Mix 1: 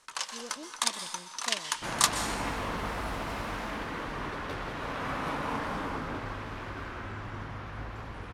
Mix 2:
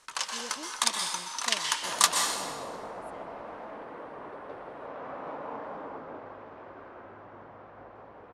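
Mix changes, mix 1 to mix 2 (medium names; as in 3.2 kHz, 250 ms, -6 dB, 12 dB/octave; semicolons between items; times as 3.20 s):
first sound: send +8.0 dB; second sound: add band-pass filter 590 Hz, Q 1.5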